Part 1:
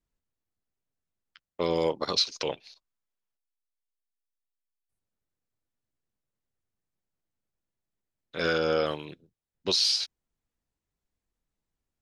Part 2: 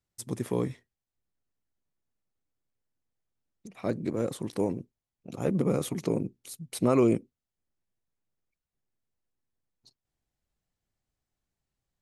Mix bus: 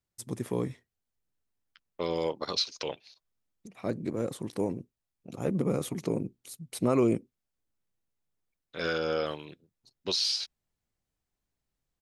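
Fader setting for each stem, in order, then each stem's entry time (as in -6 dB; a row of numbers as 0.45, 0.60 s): -4.0, -2.0 dB; 0.40, 0.00 s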